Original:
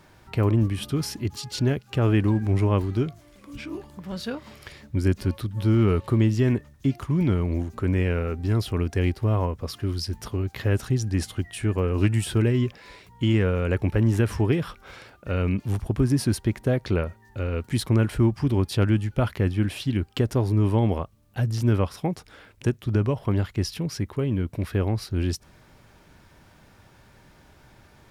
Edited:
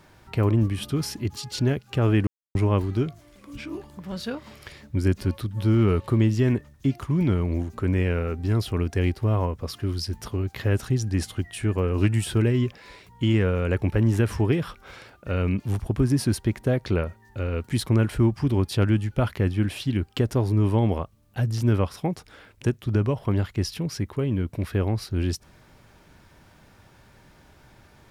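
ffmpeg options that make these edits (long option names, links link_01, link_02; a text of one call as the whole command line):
ffmpeg -i in.wav -filter_complex "[0:a]asplit=3[link_01][link_02][link_03];[link_01]atrim=end=2.27,asetpts=PTS-STARTPTS,afade=type=out:start_time=2.266:duration=0.004:curve=hsin[link_04];[link_02]atrim=start=2.27:end=2.55,asetpts=PTS-STARTPTS,volume=0[link_05];[link_03]atrim=start=2.55,asetpts=PTS-STARTPTS,afade=type=in:duration=0.004:curve=hsin[link_06];[link_04][link_05][link_06]concat=n=3:v=0:a=1" out.wav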